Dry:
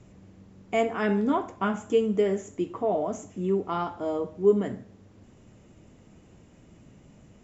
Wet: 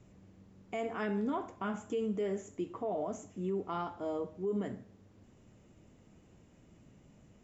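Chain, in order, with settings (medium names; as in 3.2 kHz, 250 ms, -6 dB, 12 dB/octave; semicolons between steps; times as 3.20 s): peak limiter -20 dBFS, peak gain reduction 9.5 dB; trim -7 dB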